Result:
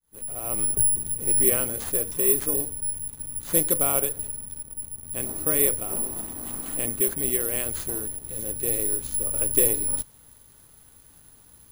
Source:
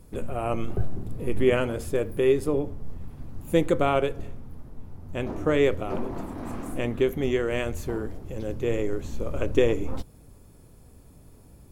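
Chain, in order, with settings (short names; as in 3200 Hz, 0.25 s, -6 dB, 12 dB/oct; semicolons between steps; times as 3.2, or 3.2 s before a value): opening faded in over 0.62 s; high shelf 5500 Hz +11.5 dB; in parallel at -10.5 dB: requantised 6-bit, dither none; on the sum: careless resampling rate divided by 4×, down none, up zero stuff; gain -9 dB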